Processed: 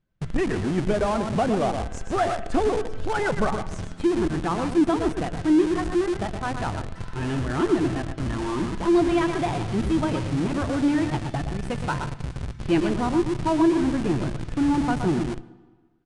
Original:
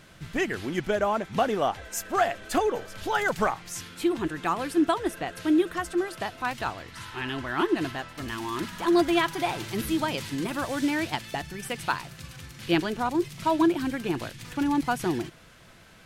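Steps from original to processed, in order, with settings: bin magnitudes rounded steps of 15 dB; gate -45 dBFS, range -27 dB; tilt -3 dB/oct; echo 0.12 s -8 dB; reverb RT60 1.4 s, pre-delay 80 ms, DRR 16 dB; in parallel at -5.5 dB: Schmitt trigger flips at -30 dBFS; on the sum: downsampling 22050 Hz; gain -3 dB

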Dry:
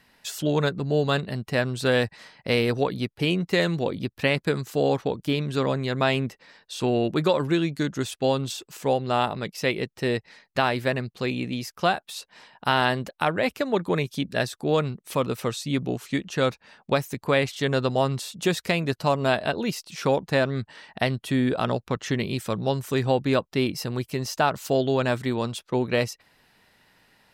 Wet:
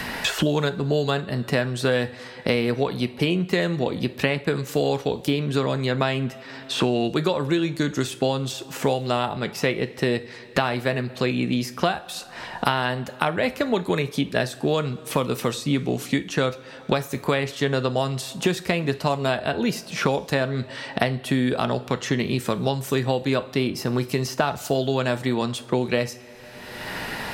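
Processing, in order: two-slope reverb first 0.3 s, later 1.7 s, from -18 dB, DRR 10 dB; three-band squash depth 100%

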